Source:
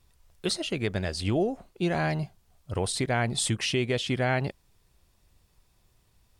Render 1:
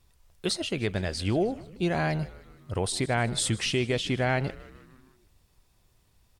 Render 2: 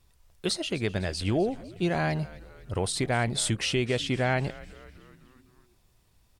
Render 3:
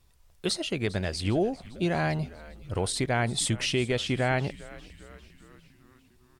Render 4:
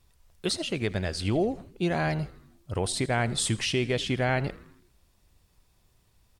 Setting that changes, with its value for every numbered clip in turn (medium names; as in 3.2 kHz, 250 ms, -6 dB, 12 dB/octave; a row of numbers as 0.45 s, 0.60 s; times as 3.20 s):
frequency-shifting echo, time: 154 ms, 253 ms, 401 ms, 81 ms